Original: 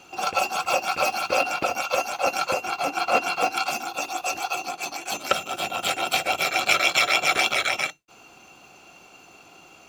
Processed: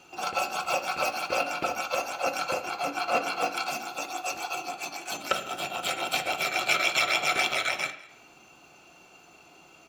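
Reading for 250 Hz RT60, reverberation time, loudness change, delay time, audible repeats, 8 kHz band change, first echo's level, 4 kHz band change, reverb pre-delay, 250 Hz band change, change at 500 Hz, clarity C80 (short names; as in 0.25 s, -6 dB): 0.80 s, 0.85 s, -4.5 dB, 0.198 s, 1, -5.0 dB, -22.0 dB, -4.5 dB, 3 ms, -3.5 dB, -4.5 dB, 13.5 dB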